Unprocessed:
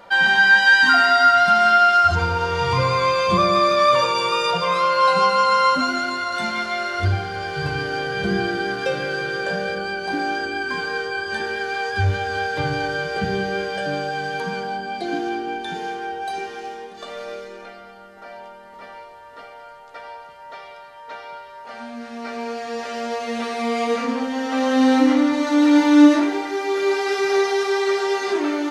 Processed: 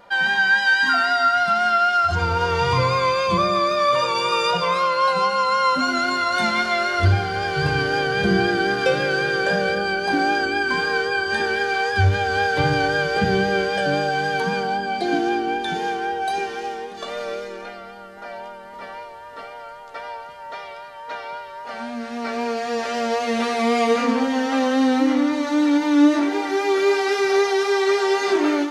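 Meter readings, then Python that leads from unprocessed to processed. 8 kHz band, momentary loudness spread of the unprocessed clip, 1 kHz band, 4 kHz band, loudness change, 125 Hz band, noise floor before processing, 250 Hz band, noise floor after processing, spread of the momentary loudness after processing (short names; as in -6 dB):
+0.5 dB, 20 LU, -0.5 dB, 0.0 dB, -0.5 dB, +2.5 dB, -42 dBFS, -1.5 dB, -38 dBFS, 17 LU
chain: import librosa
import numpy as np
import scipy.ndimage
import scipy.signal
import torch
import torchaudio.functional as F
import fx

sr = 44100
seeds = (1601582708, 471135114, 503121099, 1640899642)

y = fx.rider(x, sr, range_db=4, speed_s=0.5)
y = fx.vibrato(y, sr, rate_hz=3.8, depth_cents=28.0)
y = fx.end_taper(y, sr, db_per_s=140.0)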